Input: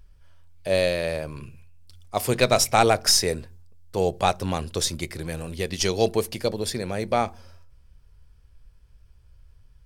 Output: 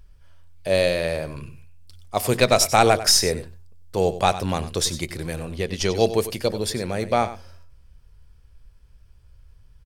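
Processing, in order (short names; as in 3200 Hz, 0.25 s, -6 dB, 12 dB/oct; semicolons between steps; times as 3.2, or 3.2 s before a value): 5.39–5.95 high shelf 5100 Hz -9 dB; echo 95 ms -14 dB; gain +2 dB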